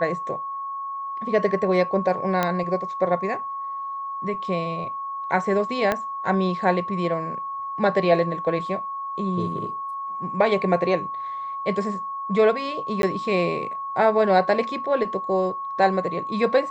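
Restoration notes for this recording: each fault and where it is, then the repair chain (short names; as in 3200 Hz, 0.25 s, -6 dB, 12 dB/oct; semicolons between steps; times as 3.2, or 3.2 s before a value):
tone 1100 Hz -28 dBFS
2.43 pop -8 dBFS
5.92 pop -9 dBFS
13.02–13.03 gap 12 ms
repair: de-click; notch 1100 Hz, Q 30; interpolate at 13.02, 12 ms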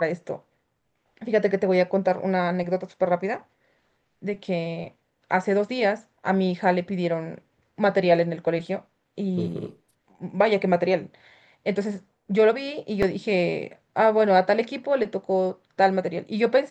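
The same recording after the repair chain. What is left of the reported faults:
5.92 pop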